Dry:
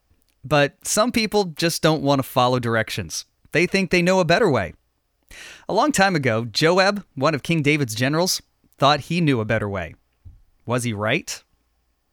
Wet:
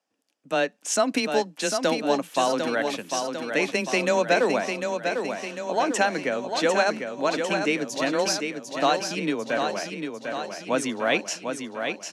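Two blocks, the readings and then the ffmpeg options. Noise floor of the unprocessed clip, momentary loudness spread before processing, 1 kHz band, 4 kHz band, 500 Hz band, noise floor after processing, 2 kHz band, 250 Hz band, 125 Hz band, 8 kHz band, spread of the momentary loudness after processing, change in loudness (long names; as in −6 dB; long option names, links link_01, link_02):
−69 dBFS, 10 LU, −3.5 dB, −5.0 dB, −3.0 dB, −57 dBFS, −4.0 dB, −6.0 dB, −17.0 dB, −3.0 dB, 8 LU, −5.0 dB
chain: -filter_complex "[0:a]dynaudnorm=framelen=550:gausssize=3:maxgain=11.5dB,afreqshift=14,highpass=frequency=240:width=0.5412,highpass=frequency=240:width=1.3066,equalizer=frequency=370:width_type=q:width=4:gain=-5,equalizer=frequency=1200:width_type=q:width=4:gain=-5,equalizer=frequency=2100:width_type=q:width=4:gain=-4,equalizer=frequency=4100:width_type=q:width=4:gain=-5,equalizer=frequency=9400:width_type=q:width=4:gain=-5,lowpass=frequency=9900:width=0.5412,lowpass=frequency=9900:width=1.3066,asplit=2[link_01][link_02];[link_02]aecho=0:1:749|1498|2247|2996|3745|4494|5243:0.501|0.286|0.163|0.0928|0.0529|0.0302|0.0172[link_03];[link_01][link_03]amix=inputs=2:normalize=0,volume=-6dB"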